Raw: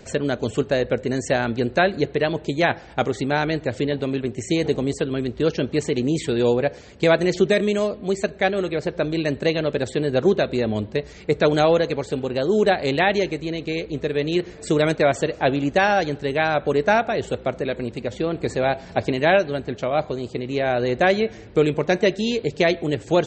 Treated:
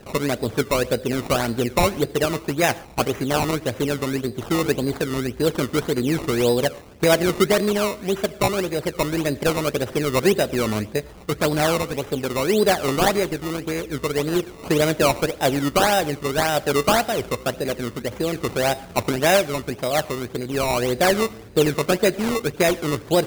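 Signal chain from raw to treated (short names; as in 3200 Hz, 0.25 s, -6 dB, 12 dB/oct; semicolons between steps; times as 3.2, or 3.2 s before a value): 10.99–11.94 bell 480 Hz -5.5 dB 0.94 oct; decimation with a swept rate 19×, swing 100% 1.8 Hz; reverb, pre-delay 68 ms, DRR 22.5 dB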